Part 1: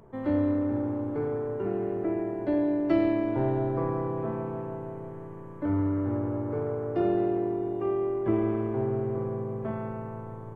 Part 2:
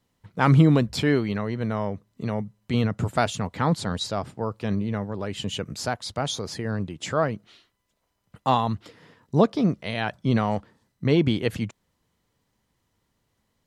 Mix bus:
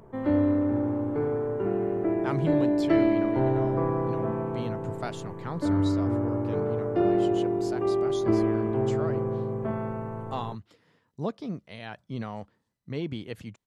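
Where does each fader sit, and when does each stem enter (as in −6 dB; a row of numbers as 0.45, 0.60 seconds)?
+2.5, −12.5 decibels; 0.00, 1.85 seconds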